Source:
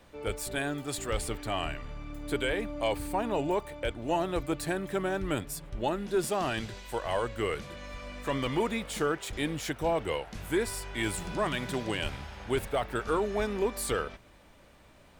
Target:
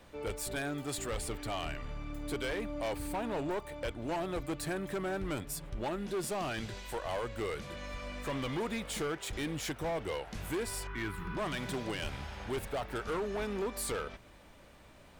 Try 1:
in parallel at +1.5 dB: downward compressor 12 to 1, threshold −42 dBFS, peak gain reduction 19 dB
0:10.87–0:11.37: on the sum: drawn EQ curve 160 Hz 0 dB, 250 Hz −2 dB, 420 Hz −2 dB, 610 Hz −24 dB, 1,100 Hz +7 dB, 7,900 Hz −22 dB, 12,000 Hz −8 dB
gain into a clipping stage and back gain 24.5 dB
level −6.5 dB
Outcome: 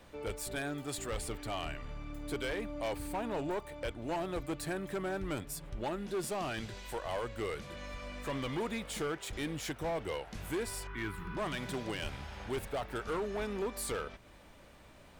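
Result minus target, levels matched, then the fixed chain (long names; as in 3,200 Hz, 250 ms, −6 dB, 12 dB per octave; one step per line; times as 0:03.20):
downward compressor: peak gain reduction +6.5 dB
in parallel at +1.5 dB: downward compressor 12 to 1, threshold −35 dBFS, peak gain reduction 12.5 dB
0:10.87–0:11.37: on the sum: drawn EQ curve 160 Hz 0 dB, 250 Hz −2 dB, 420 Hz −2 dB, 610 Hz −24 dB, 1,100 Hz +7 dB, 7,900 Hz −22 dB, 12,000 Hz −8 dB
gain into a clipping stage and back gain 24.5 dB
level −6.5 dB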